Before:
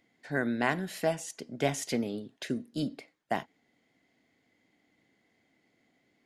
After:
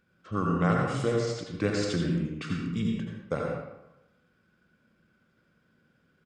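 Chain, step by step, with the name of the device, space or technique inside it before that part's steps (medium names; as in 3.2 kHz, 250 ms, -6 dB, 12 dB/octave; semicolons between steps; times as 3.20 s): 1.58–2.30 s: high-pass 68 Hz 24 dB/octave; monster voice (pitch shift -5.5 st; bass shelf 120 Hz +7 dB; delay 82 ms -9 dB; reverberation RT60 0.95 s, pre-delay 71 ms, DRR 0 dB); trim -1 dB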